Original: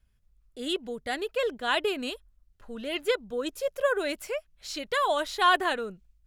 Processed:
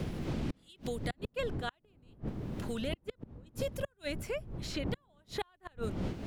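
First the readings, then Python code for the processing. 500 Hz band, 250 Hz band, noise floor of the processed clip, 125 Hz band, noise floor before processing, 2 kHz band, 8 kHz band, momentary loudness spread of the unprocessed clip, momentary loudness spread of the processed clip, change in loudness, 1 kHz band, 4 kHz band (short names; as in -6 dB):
-10.0 dB, -2.0 dB, -72 dBFS, n/a, -67 dBFS, -15.0 dB, -8.0 dB, 14 LU, 7 LU, -10.5 dB, -17.5 dB, -12.5 dB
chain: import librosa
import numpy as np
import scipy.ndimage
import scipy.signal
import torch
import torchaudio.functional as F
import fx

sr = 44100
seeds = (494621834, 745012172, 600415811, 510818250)

y = fx.dmg_wind(x, sr, seeds[0], corner_hz=200.0, level_db=-27.0)
y = fx.gate_flip(y, sr, shuts_db=-16.0, range_db=-41)
y = fx.band_squash(y, sr, depth_pct=100)
y = F.gain(torch.from_numpy(y), -5.0).numpy()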